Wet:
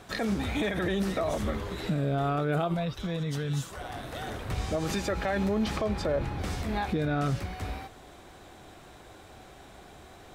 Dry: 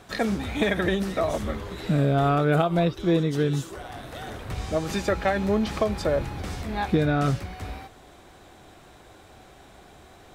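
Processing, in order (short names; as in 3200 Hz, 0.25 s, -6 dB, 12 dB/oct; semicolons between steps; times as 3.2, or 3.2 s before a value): 5.76–6.4 high shelf 7700 Hz -> 4800 Hz -9 dB; limiter -20.5 dBFS, peak gain reduction 10.5 dB; 2.74–3.81 bell 350 Hz -14.5 dB 0.6 oct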